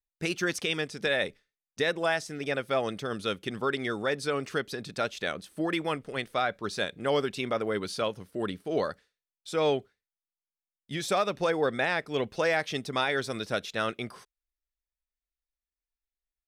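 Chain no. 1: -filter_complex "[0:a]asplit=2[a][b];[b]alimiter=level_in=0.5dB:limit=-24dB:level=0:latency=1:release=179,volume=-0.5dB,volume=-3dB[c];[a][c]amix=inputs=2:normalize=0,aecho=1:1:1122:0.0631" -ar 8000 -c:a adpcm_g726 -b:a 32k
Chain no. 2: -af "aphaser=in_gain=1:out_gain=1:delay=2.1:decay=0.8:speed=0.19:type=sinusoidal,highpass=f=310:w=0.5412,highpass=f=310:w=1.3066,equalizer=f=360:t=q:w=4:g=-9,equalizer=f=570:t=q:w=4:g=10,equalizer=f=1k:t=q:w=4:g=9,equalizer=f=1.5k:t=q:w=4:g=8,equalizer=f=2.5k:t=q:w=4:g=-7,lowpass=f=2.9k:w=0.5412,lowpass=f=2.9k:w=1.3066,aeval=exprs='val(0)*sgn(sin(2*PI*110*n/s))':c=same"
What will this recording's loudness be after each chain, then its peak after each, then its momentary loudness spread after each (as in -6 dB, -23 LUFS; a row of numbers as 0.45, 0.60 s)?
-28.0, -22.0 LUFS; -13.0, -1.5 dBFS; 7, 12 LU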